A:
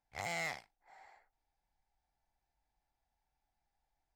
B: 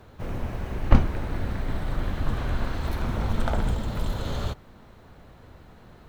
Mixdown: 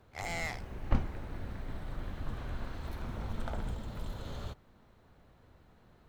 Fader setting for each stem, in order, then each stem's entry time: +1.0 dB, -12.0 dB; 0.00 s, 0.00 s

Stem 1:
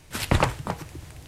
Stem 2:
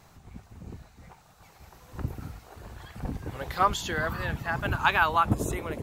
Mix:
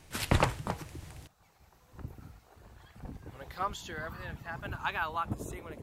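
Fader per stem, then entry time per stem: -5.0 dB, -10.5 dB; 0.00 s, 0.00 s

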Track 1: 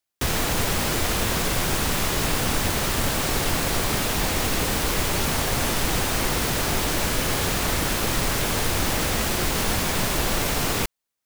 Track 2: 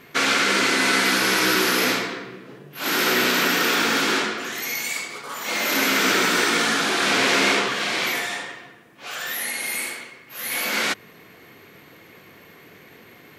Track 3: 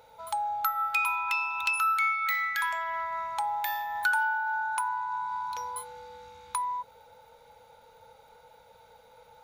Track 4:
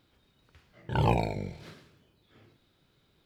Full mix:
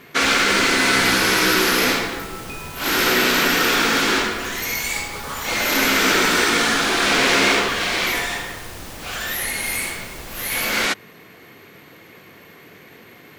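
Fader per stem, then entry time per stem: -12.0 dB, +2.5 dB, -10.0 dB, -8.5 dB; 0.00 s, 0.00 s, 1.55 s, 0.00 s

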